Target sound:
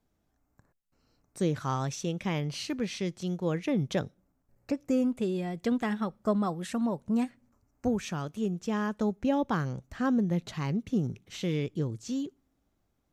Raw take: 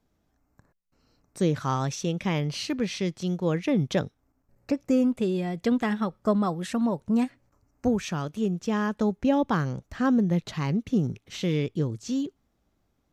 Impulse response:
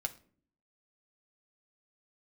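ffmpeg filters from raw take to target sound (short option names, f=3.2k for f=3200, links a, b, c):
-filter_complex "[0:a]asplit=2[a][b];[b]highshelf=f=4.9k:t=q:w=1.5:g=12[c];[1:a]atrim=start_sample=2205[d];[c][d]afir=irnorm=-1:irlink=0,volume=-20.5dB[e];[a][e]amix=inputs=2:normalize=0,volume=-4.5dB"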